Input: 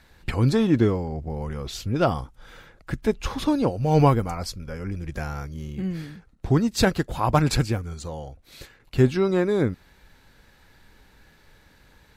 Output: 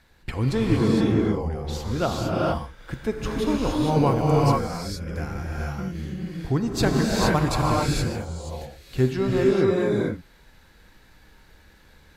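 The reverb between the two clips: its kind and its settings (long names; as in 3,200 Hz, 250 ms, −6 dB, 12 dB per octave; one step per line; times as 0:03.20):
reverb whose tail is shaped and stops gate 490 ms rising, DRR −3.5 dB
level −4 dB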